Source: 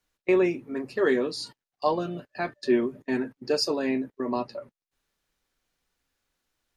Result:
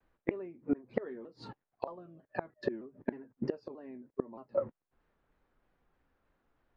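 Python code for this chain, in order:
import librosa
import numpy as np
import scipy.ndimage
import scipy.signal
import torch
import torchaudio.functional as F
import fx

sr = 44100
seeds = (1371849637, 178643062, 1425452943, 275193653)

y = scipy.signal.sosfilt(scipy.signal.butter(2, 1300.0, 'lowpass', fs=sr, output='sos'), x)
y = fx.gate_flip(y, sr, shuts_db=-26.0, range_db=-28)
y = fx.vibrato_shape(y, sr, shape='saw_down', rate_hz=3.2, depth_cents=160.0)
y = y * librosa.db_to_amplitude(7.5)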